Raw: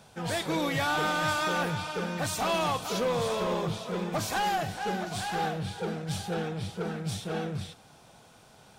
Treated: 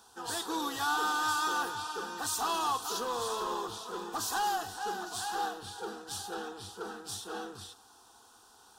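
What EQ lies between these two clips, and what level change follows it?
low-shelf EQ 450 Hz −12 dB
phaser with its sweep stopped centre 590 Hz, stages 6
+2.5 dB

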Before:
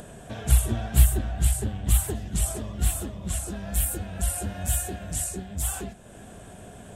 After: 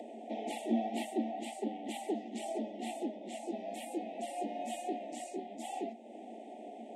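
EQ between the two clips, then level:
Chebyshev high-pass with heavy ripple 220 Hz, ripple 6 dB
Chebyshev band-stop filter 870–1,900 Hz, order 5
head-to-tape spacing loss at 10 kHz 26 dB
+5.5 dB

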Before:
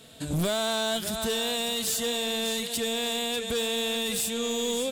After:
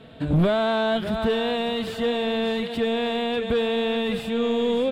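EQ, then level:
high-frequency loss of the air 480 metres
+8.5 dB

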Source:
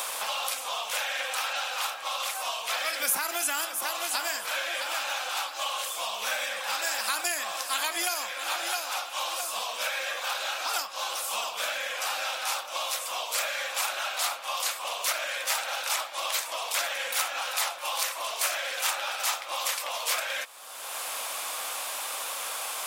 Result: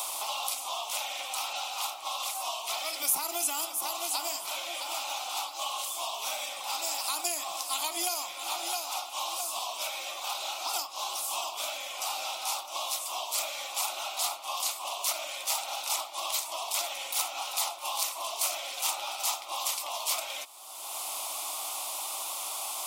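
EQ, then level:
phaser with its sweep stopped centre 330 Hz, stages 8
0.0 dB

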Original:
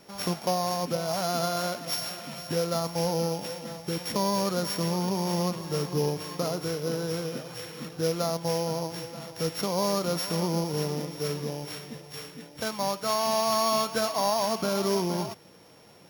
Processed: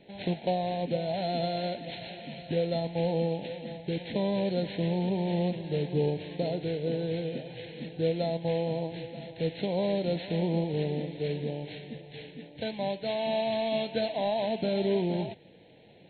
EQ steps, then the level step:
Butterworth band-reject 1,200 Hz, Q 1.1
linear-phase brick-wall low-pass 4,300 Hz
0.0 dB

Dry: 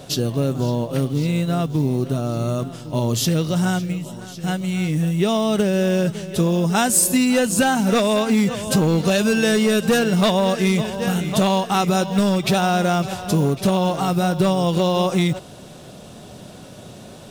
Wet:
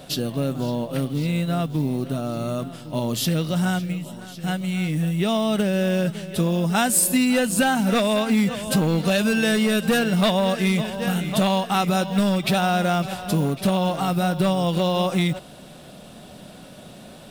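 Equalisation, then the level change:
graphic EQ with 15 bands 100 Hz −12 dB, 400 Hz −6 dB, 1,000 Hz −3 dB, 6,300 Hz −7 dB
0.0 dB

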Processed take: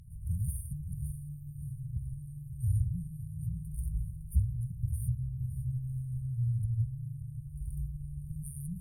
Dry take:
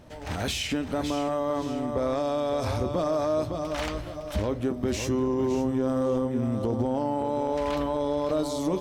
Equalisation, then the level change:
linear-phase brick-wall band-stop 180–8,800 Hz
low-shelf EQ 260 Hz +11 dB
parametric band 5,700 Hz +13 dB 2.6 octaves
−6.5 dB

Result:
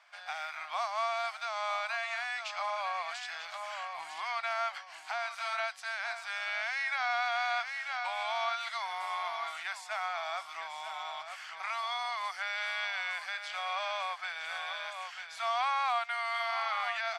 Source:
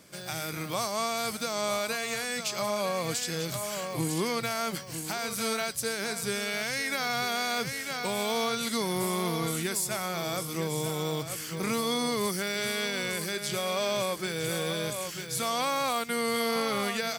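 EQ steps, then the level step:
elliptic high-pass filter 710 Hz, stop band 40 dB
low-pass filter 2,600 Hz 12 dB per octave
+1.0 dB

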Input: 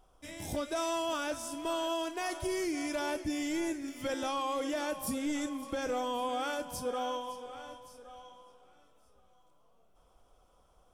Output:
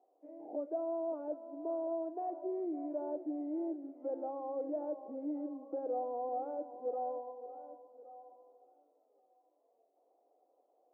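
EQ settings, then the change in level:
elliptic band-pass filter 290–750 Hz, stop band 80 dB
spectral tilt +2.5 dB per octave
+1.0 dB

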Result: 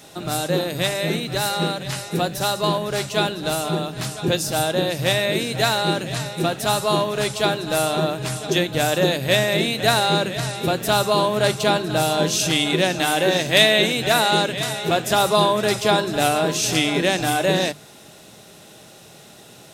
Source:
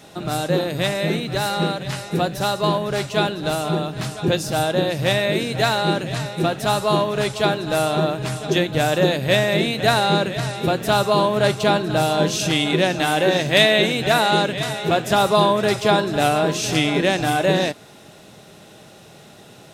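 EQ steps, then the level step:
high-shelf EQ 4,600 Hz +8 dB
mains-hum notches 50/100/150/200 Hz
−1.5 dB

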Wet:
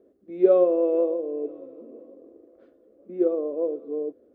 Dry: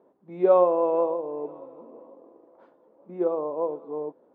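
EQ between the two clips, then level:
low-shelf EQ 130 Hz +7.5 dB
low-shelf EQ 280 Hz +10 dB
phaser with its sweep stopped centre 380 Hz, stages 4
0.0 dB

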